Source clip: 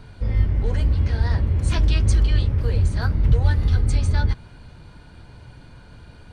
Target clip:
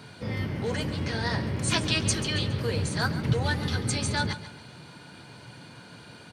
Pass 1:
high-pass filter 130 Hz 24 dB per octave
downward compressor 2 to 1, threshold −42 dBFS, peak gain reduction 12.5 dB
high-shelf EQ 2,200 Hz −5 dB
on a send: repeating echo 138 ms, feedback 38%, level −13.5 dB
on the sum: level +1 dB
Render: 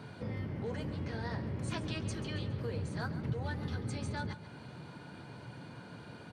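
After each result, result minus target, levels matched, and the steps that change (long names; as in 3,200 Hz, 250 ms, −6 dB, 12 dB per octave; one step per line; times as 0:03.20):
downward compressor: peak gain reduction +12.5 dB; 4,000 Hz band −5.5 dB
remove: downward compressor 2 to 1, threshold −42 dBFS, peak gain reduction 12.5 dB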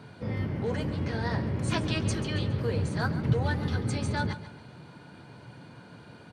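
4,000 Hz band −7.0 dB
change: high-shelf EQ 2,200 Hz +7 dB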